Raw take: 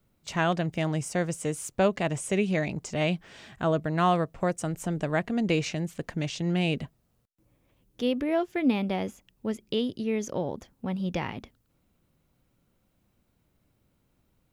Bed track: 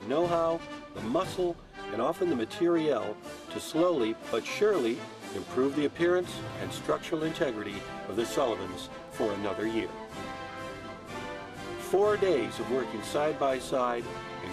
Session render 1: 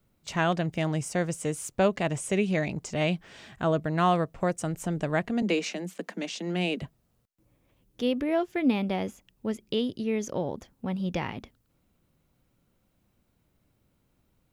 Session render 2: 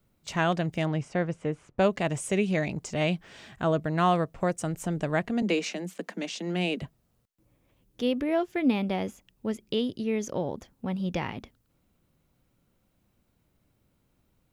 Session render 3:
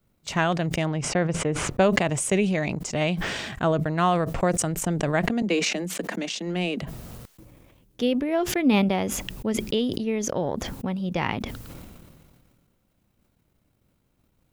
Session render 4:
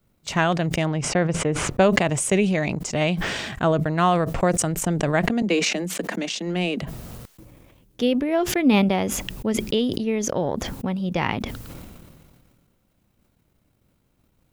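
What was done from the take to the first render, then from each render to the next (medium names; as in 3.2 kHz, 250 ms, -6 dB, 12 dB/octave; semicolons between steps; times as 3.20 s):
5.42–6.82 s: steep high-pass 180 Hz 96 dB/octave
0.85–1.78 s: low-pass 3.9 kHz -> 1.6 kHz
transient shaper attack +5 dB, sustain -9 dB; decay stretcher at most 28 dB/s
trim +2.5 dB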